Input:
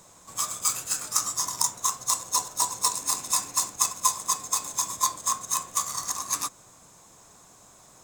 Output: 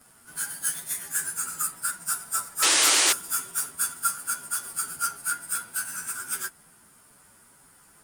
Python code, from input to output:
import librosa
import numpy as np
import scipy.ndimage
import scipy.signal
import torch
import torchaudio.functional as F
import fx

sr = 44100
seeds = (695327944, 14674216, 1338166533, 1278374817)

y = fx.pitch_bins(x, sr, semitones=5.0)
y = fx.spec_paint(y, sr, seeds[0], shape='noise', start_s=2.62, length_s=0.51, low_hz=280.0, high_hz=10000.0, level_db=-22.0)
y = fx.peak_eq(y, sr, hz=570.0, db=-4.0, octaves=1.8)
y = y * 10.0 ** (2.0 / 20.0)